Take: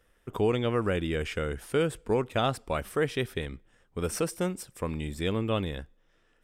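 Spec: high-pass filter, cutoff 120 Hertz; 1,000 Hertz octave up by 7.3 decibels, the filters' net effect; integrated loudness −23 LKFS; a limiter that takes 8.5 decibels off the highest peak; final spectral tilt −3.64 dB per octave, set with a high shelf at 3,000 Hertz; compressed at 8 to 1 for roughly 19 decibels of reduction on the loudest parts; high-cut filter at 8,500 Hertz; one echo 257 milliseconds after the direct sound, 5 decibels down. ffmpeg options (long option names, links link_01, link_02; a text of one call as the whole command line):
ffmpeg -i in.wav -af "highpass=120,lowpass=8500,equalizer=frequency=1000:width_type=o:gain=8.5,highshelf=frequency=3000:gain=8.5,acompressor=threshold=-39dB:ratio=8,alimiter=level_in=8dB:limit=-24dB:level=0:latency=1,volume=-8dB,aecho=1:1:257:0.562,volume=21.5dB" out.wav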